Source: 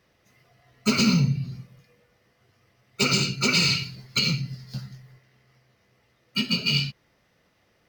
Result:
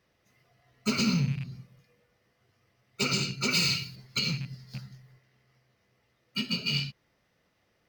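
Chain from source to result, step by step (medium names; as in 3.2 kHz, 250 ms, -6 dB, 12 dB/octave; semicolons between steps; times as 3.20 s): rattle on loud lows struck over -27 dBFS, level -28 dBFS; 3.51–3.96 s: treble shelf 9.9 kHz +11.5 dB; trim -6 dB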